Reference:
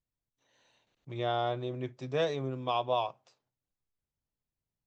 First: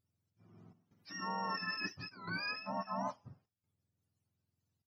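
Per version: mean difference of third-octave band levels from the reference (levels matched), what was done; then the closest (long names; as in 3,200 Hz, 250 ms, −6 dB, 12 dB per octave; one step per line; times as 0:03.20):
12.0 dB: frequency axis turned over on the octave scale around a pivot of 810 Hz
reversed playback
downward compressor 12 to 1, threshold −41 dBFS, peak gain reduction 15.5 dB
reversed playback
gate pattern "xxxxxxxx..xxxxx" 165 BPM −12 dB
level +5.5 dB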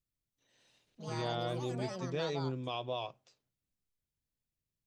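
7.0 dB: parametric band 910 Hz −9 dB 1.4 octaves
brickwall limiter −27 dBFS, peak gain reduction 5 dB
delay with pitch and tempo change per echo 190 ms, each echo +5 semitones, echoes 3, each echo −6 dB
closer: second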